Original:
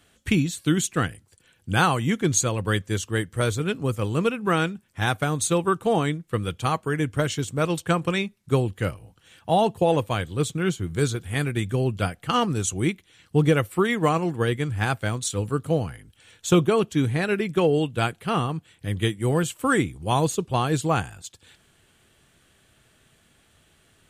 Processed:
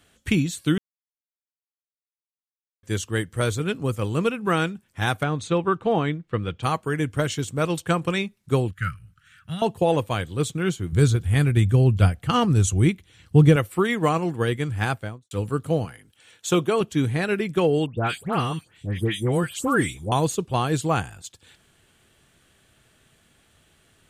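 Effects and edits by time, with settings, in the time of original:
0.78–2.83 mute
5.23–6.63 LPF 3500 Hz
8.71–9.62 EQ curve 150 Hz 0 dB, 400 Hz -24 dB, 890 Hz -28 dB, 1300 Hz +7 dB, 3200 Hz -6 dB
10.92–13.56 bell 71 Hz +14 dB 2.1 oct
14.85–15.31 studio fade out
15.85–16.81 HPF 260 Hz 6 dB/oct
17.86–20.12 dispersion highs, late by 0.124 s, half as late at 2200 Hz

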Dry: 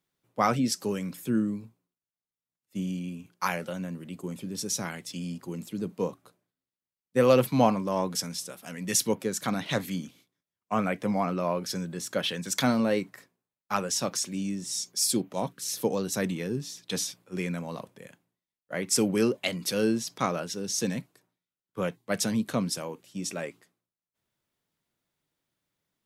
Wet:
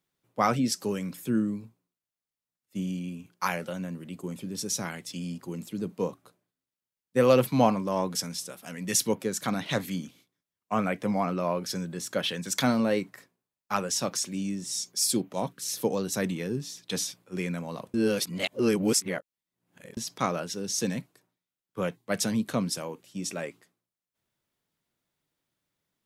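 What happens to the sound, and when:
17.94–19.97 reverse

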